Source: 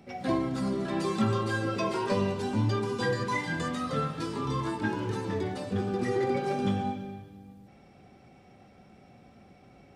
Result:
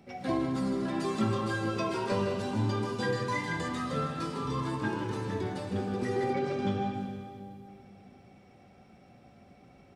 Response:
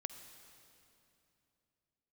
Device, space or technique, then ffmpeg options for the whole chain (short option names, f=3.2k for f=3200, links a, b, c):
cave: -filter_complex "[0:a]aecho=1:1:157:0.355[a];[1:a]atrim=start_sample=2205[b];[a][b]afir=irnorm=-1:irlink=0,asettb=1/sr,asplit=3[c][d][e];[c]atrim=end=6.334[f];[d]atrim=start=6.33:end=6.94,asetpts=PTS-STARTPTS,afade=t=in:d=0.004:c=qsin,afade=t=out:st=0.606:d=0.004:c=qsin,lowpass=6.2k[g];[e]atrim=start=6.936[h];[f][g]acrossfade=d=0.004:c1=hsin:c2=qsin[i];[i][h]acrossfade=d=0.004:c1=qsin:c2=hsin"